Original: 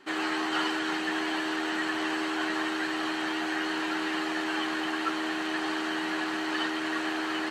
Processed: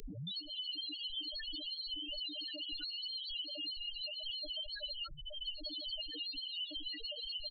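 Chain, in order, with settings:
turntable start at the beginning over 0.35 s
phase-vocoder pitch shift with formants kept −5 semitones
parametric band 870 Hz −9.5 dB 0.28 octaves
volume swells 711 ms
high shelf with overshoot 2,600 Hz +11.5 dB, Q 1.5
background noise pink −40 dBFS
brickwall limiter −22 dBFS, peak gain reduction 9 dB
comb filter 6.7 ms, depth 81%
spectral peaks only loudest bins 2
multiband upward and downward compressor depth 100%
level −2 dB

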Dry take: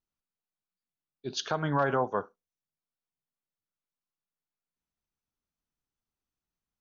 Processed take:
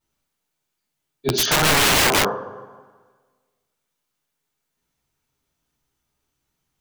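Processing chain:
coupled-rooms reverb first 0.48 s, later 1.5 s, from −16 dB, DRR −9.5 dB
wrap-around overflow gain 17.5 dB
level +6 dB

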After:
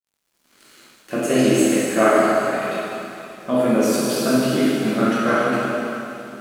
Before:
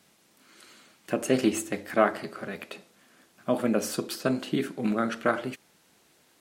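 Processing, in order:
high-pass filter 120 Hz 6 dB per octave
dense smooth reverb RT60 3.2 s, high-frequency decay 0.9×, DRR −9.5 dB
dead-zone distortion −49.5 dBFS

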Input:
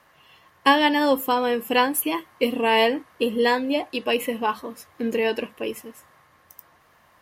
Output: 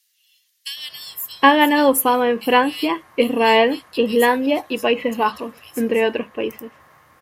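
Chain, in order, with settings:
multiband delay without the direct sound highs, lows 770 ms, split 3,700 Hz
level +5 dB

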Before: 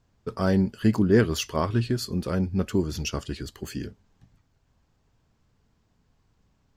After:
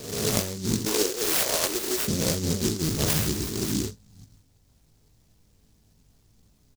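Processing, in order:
peak hold with a rise ahead of every peak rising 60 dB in 0.97 s
0:00.85–0:02.08: high-pass filter 400 Hz 24 dB per octave
compressor whose output falls as the input rises −25 dBFS, ratio −0.5
double-tracking delay 19 ms −5 dB
0:02.89–0:03.29: reverse
short delay modulated by noise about 5,500 Hz, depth 0.25 ms

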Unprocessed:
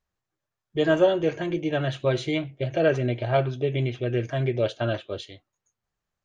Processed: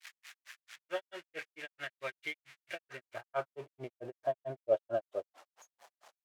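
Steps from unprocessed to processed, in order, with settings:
spike at every zero crossing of −22 dBFS
band-pass filter sweep 2,000 Hz → 680 Hz, 0:02.79–0:03.97
granular cloud 125 ms, grains 4.5 per second, pitch spread up and down by 0 semitones
level +1 dB

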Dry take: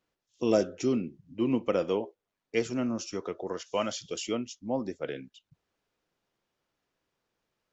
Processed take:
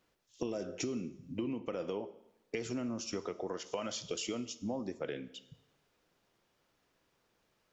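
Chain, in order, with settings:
brickwall limiter −22 dBFS, peak gain reduction 10 dB
downward compressor, threshold −41 dBFS, peak gain reduction 14 dB
on a send: convolution reverb RT60 0.95 s, pre-delay 8 ms, DRR 14 dB
on the sum: level +6 dB

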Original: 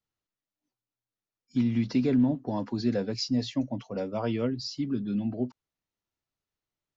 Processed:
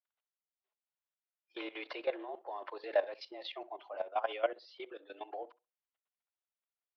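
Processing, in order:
single-sideband voice off tune +91 Hz 480–3,500 Hz
output level in coarse steps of 16 dB
sample-and-hold tremolo
tape delay 65 ms, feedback 21%, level −18 dB, low-pass 1,500 Hz
level +7.5 dB

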